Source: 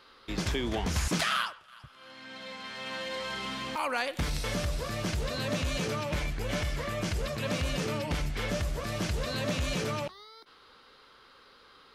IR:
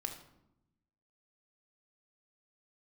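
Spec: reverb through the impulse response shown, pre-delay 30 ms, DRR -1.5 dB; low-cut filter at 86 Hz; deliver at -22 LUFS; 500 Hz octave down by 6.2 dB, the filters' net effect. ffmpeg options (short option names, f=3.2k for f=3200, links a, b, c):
-filter_complex "[0:a]highpass=86,equalizer=f=500:t=o:g=-7.5,asplit=2[a][b];[1:a]atrim=start_sample=2205,adelay=30[c];[b][c]afir=irnorm=-1:irlink=0,volume=2dB[d];[a][d]amix=inputs=2:normalize=0,volume=8.5dB"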